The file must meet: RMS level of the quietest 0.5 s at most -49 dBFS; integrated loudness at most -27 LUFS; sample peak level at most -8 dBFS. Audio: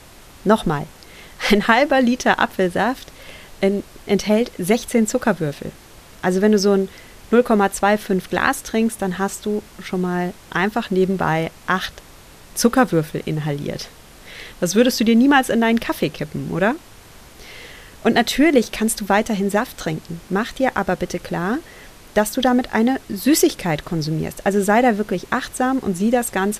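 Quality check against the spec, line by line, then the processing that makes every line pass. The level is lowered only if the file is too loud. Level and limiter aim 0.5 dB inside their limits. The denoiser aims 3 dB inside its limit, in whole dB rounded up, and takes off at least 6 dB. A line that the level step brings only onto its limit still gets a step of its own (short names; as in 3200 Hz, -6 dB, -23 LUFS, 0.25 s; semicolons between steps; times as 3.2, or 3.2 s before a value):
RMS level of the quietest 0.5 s -43 dBFS: fail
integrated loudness -19.5 LUFS: fail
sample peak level -1.5 dBFS: fail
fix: gain -8 dB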